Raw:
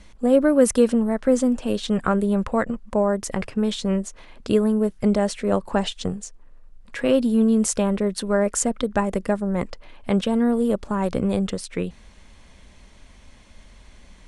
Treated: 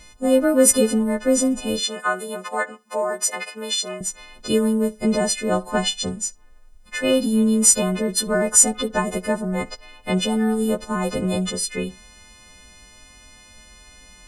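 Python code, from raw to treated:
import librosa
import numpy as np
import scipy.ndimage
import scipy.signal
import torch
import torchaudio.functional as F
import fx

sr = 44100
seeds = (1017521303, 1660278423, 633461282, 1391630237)

y = fx.freq_snap(x, sr, grid_st=3)
y = fx.highpass(y, sr, hz=530.0, slope=12, at=(1.8, 4.01))
y = fx.echo_tape(y, sr, ms=65, feedback_pct=22, wet_db=-21.0, lp_hz=2500.0, drive_db=7.0, wow_cents=13)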